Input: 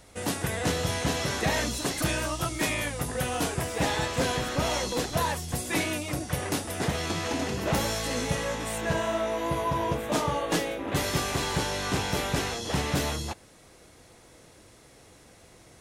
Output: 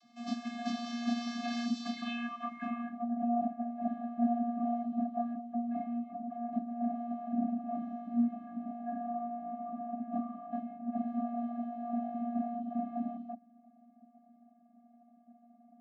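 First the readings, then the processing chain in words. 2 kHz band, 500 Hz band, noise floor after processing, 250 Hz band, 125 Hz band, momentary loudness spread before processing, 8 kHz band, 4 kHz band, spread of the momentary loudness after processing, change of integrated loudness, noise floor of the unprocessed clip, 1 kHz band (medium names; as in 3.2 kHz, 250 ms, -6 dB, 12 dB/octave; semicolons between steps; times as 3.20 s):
under -15 dB, -12.0 dB, -63 dBFS, -0.5 dB, under -20 dB, 3 LU, under -25 dB, under -15 dB, 8 LU, -7.5 dB, -55 dBFS, -6.0 dB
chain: vocoder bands 32, square 237 Hz; low-pass sweep 5 kHz -> 610 Hz, 1.84–3.19 s; trim -6.5 dB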